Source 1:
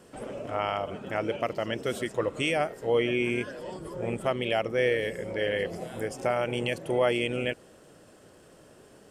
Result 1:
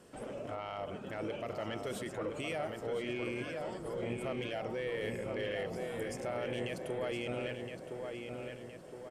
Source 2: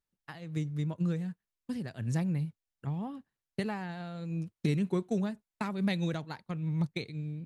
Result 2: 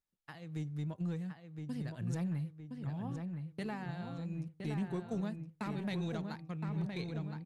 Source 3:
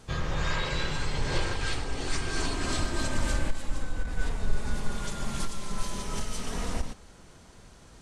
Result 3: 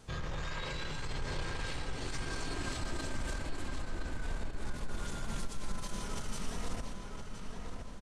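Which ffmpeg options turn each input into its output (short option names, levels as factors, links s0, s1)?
-filter_complex "[0:a]bandreject=f=386.4:t=h:w=4,bandreject=f=772.8:t=h:w=4,bandreject=f=1159.2:t=h:w=4,alimiter=limit=0.0668:level=0:latency=1:release=28,asoftclip=type=tanh:threshold=0.0596,asplit=2[s0][s1];[s1]adelay=1016,lowpass=f=3300:p=1,volume=0.562,asplit=2[s2][s3];[s3]adelay=1016,lowpass=f=3300:p=1,volume=0.53,asplit=2[s4][s5];[s5]adelay=1016,lowpass=f=3300:p=1,volume=0.53,asplit=2[s6][s7];[s7]adelay=1016,lowpass=f=3300:p=1,volume=0.53,asplit=2[s8][s9];[s9]adelay=1016,lowpass=f=3300:p=1,volume=0.53,asplit=2[s10][s11];[s11]adelay=1016,lowpass=f=3300:p=1,volume=0.53,asplit=2[s12][s13];[s13]adelay=1016,lowpass=f=3300:p=1,volume=0.53[s14];[s0][s2][s4][s6][s8][s10][s12][s14]amix=inputs=8:normalize=0,aresample=32000,aresample=44100,volume=0.596"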